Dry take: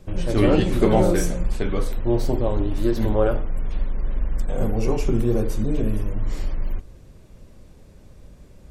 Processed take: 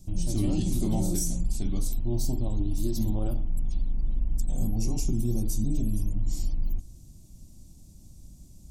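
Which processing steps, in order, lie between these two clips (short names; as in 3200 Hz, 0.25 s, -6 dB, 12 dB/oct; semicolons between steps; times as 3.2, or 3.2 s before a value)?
EQ curve 180 Hz 0 dB, 320 Hz -3 dB, 460 Hz -21 dB, 710 Hz -9 dB, 1600 Hz -24 dB, 6200 Hz +9 dB; limiter -15 dBFS, peak gain reduction 6.5 dB; gain -2.5 dB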